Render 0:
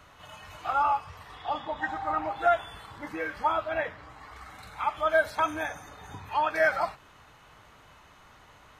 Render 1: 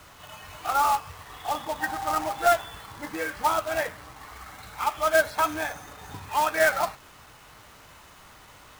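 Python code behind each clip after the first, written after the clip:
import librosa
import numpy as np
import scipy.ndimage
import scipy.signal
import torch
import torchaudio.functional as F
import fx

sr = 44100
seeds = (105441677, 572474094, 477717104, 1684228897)

y = fx.quant_companded(x, sr, bits=4)
y = F.gain(torch.from_numpy(y), 2.0).numpy()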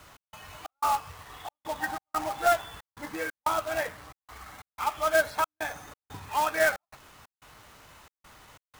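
y = fx.step_gate(x, sr, bpm=91, pattern='x.xx.xxx', floor_db=-60.0, edge_ms=4.5)
y = F.gain(torch.from_numpy(y), -2.5).numpy()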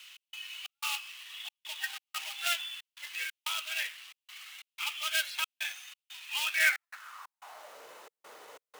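y = fx.filter_sweep_highpass(x, sr, from_hz=2800.0, to_hz=460.0, start_s=6.52, end_s=7.86, q=3.9)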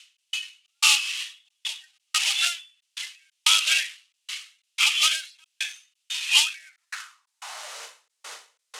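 y = fx.weighting(x, sr, curve='ITU-R 468')
y = fx.end_taper(y, sr, db_per_s=150.0)
y = F.gain(torch.from_numpy(y), 8.0).numpy()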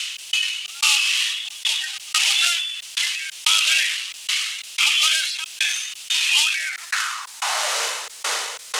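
y = fx.env_flatten(x, sr, amount_pct=70)
y = F.gain(torch.from_numpy(y), -1.0).numpy()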